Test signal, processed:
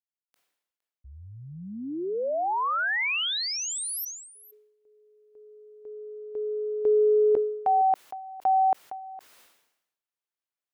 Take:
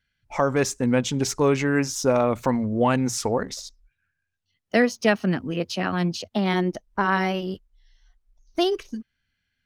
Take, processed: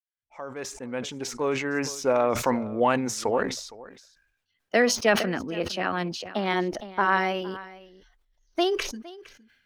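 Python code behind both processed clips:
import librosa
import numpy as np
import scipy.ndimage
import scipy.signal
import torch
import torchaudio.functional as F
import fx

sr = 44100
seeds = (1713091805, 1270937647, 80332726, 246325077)

y = fx.fade_in_head(x, sr, length_s=2.5)
y = fx.bass_treble(y, sr, bass_db=-12, treble_db=-6)
y = y + 10.0 ** (-19.5 / 20.0) * np.pad(y, (int(462 * sr / 1000.0), 0))[:len(y)]
y = fx.sustainer(y, sr, db_per_s=66.0)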